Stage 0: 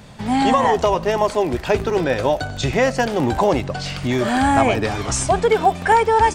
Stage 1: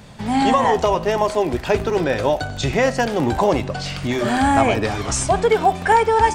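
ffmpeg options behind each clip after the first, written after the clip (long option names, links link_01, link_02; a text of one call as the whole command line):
ffmpeg -i in.wav -af "bandreject=frequency=126.4:width_type=h:width=4,bandreject=frequency=252.8:width_type=h:width=4,bandreject=frequency=379.2:width_type=h:width=4,bandreject=frequency=505.6:width_type=h:width=4,bandreject=frequency=632:width_type=h:width=4,bandreject=frequency=758.4:width_type=h:width=4,bandreject=frequency=884.8:width_type=h:width=4,bandreject=frequency=1011.2:width_type=h:width=4,bandreject=frequency=1137.6:width_type=h:width=4,bandreject=frequency=1264:width_type=h:width=4,bandreject=frequency=1390.4:width_type=h:width=4,bandreject=frequency=1516.8:width_type=h:width=4,bandreject=frequency=1643.2:width_type=h:width=4,bandreject=frequency=1769.6:width_type=h:width=4,bandreject=frequency=1896:width_type=h:width=4,bandreject=frequency=2022.4:width_type=h:width=4,bandreject=frequency=2148.8:width_type=h:width=4,bandreject=frequency=2275.2:width_type=h:width=4,bandreject=frequency=2401.6:width_type=h:width=4,bandreject=frequency=2528:width_type=h:width=4,bandreject=frequency=2654.4:width_type=h:width=4,bandreject=frequency=2780.8:width_type=h:width=4,bandreject=frequency=2907.2:width_type=h:width=4,bandreject=frequency=3033.6:width_type=h:width=4,bandreject=frequency=3160:width_type=h:width=4,bandreject=frequency=3286.4:width_type=h:width=4,bandreject=frequency=3412.8:width_type=h:width=4,bandreject=frequency=3539.2:width_type=h:width=4,bandreject=frequency=3665.6:width_type=h:width=4,bandreject=frequency=3792:width_type=h:width=4,bandreject=frequency=3918.4:width_type=h:width=4" out.wav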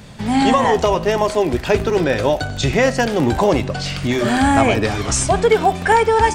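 ffmpeg -i in.wav -af "equalizer=frequency=850:width=1.2:gain=-3.5,volume=3.5dB" out.wav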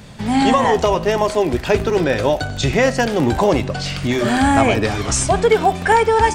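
ffmpeg -i in.wav -af anull out.wav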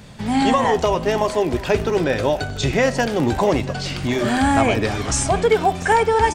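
ffmpeg -i in.wav -af "aecho=1:1:687:0.141,volume=-2.5dB" out.wav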